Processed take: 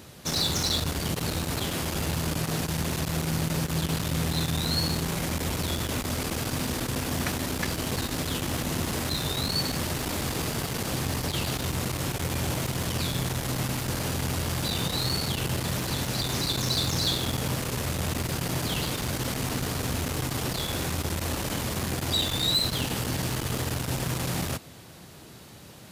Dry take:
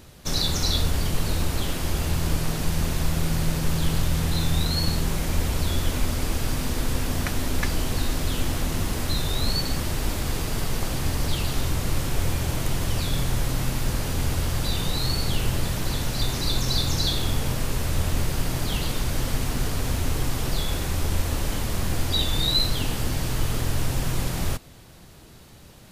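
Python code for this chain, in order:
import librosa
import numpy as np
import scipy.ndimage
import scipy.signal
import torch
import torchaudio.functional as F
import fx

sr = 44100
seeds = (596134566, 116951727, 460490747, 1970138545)

y = 10.0 ** (-20.5 / 20.0) * np.tanh(x / 10.0 ** (-20.5 / 20.0))
y = scipy.signal.sosfilt(scipy.signal.butter(2, 99.0, 'highpass', fs=sr, output='sos'), y)
y = y * librosa.db_to_amplitude(2.5)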